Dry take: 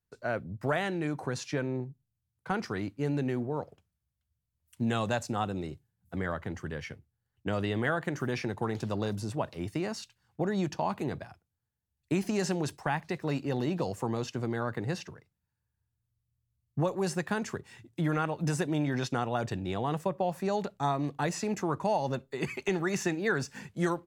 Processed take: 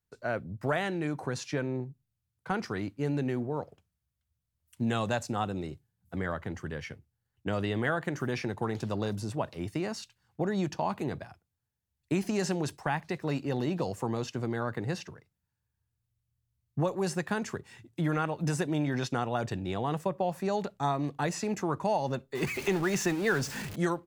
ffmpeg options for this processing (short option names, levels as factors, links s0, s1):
-filter_complex "[0:a]asettb=1/sr,asplit=3[s0][s1][s2];[s0]atrim=end=22.354[s3];[s1]atrim=start=22.35:end=23.76,asetpts=PTS-STARTPTS,afade=t=in:d=0.004:c=qsin,afade=t=out:st=1.406:d=0.004:c=qsin,aeval=exprs='val(0)+0.5*0.0168*sgn(val(0))':c=same[s4];[s2]atrim=start=23.756[s5];[s3][s4]acrossfade=d=0.004:c1=hsin:c2=qsin[s6];[s6][s5]acrossfade=d=0.004:c1=qsin:c2=hsin"